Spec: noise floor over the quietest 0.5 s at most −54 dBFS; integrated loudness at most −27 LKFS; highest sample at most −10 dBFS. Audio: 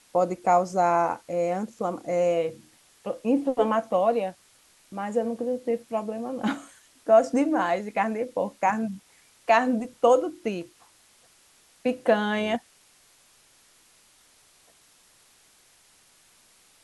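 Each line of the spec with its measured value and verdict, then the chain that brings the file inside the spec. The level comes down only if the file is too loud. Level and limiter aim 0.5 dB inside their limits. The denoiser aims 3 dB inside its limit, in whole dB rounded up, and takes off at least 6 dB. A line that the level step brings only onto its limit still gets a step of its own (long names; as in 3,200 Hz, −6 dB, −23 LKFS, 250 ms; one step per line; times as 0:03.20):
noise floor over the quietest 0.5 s −59 dBFS: in spec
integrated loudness −25.5 LKFS: out of spec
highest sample −7.5 dBFS: out of spec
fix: level −2 dB
brickwall limiter −10.5 dBFS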